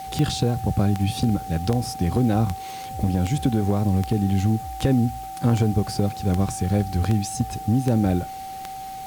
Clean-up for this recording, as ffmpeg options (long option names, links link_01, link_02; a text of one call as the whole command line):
ffmpeg -i in.wav -af "adeclick=threshold=4,bandreject=frequency=770:width=30,afwtdn=0.0045" out.wav